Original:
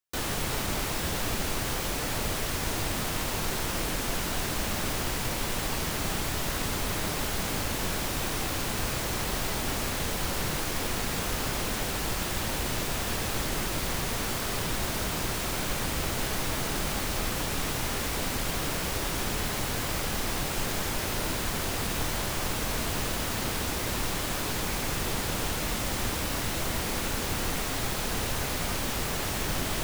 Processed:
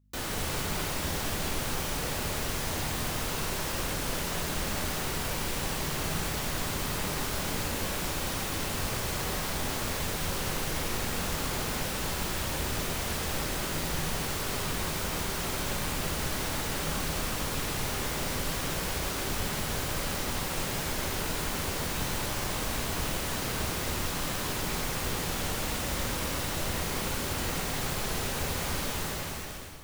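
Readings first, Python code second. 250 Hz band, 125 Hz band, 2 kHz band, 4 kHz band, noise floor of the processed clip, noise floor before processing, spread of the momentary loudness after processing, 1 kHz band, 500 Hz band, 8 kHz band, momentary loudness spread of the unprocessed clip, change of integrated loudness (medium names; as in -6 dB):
-2.0 dB, -1.0 dB, -1.5 dB, -1.5 dB, -33 dBFS, -32 dBFS, 0 LU, -1.5 dB, -1.5 dB, -1.5 dB, 0 LU, -1.5 dB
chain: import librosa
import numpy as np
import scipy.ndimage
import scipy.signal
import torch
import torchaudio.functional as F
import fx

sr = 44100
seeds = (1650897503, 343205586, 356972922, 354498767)

y = fx.fade_out_tail(x, sr, length_s=0.98)
y = fx.add_hum(y, sr, base_hz=50, snr_db=31)
y = fx.rev_gated(y, sr, seeds[0], gate_ms=300, shape='flat', drr_db=1.0)
y = y * 10.0 ** (-4.0 / 20.0)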